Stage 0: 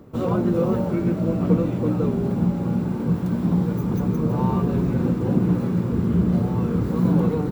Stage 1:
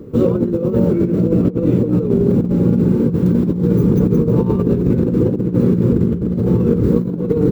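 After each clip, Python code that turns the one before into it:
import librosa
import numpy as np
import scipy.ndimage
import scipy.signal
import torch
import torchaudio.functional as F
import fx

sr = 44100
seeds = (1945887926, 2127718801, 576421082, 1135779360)

y = fx.low_shelf_res(x, sr, hz=570.0, db=6.5, q=3.0)
y = fx.over_compress(y, sr, threshold_db=-15.0, ratio=-0.5)
y = y * librosa.db_to_amplitude(1.0)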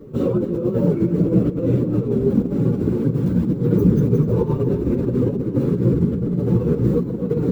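y = fx.chorus_voices(x, sr, voices=4, hz=1.0, base_ms=11, depth_ms=4.1, mix_pct=60)
y = fx.echo_feedback(y, sr, ms=251, feedback_pct=54, wet_db=-14.5)
y = y * librosa.db_to_amplitude(-1.0)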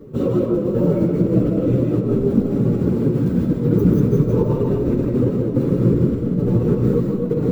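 y = fx.rev_freeverb(x, sr, rt60_s=0.41, hf_ratio=0.7, predelay_ms=110, drr_db=1.0)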